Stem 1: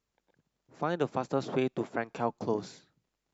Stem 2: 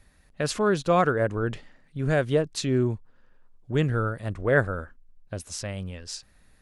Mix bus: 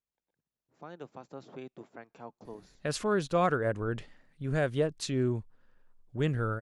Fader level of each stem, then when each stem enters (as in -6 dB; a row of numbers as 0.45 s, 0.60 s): -15.0 dB, -5.5 dB; 0.00 s, 2.45 s